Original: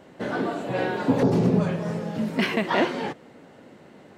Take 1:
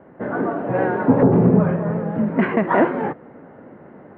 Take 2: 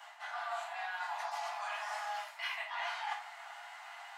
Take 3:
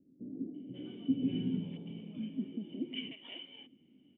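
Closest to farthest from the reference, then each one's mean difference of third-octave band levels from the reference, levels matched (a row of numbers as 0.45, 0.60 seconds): 1, 3, 2; 6.0, 12.0, 19.5 decibels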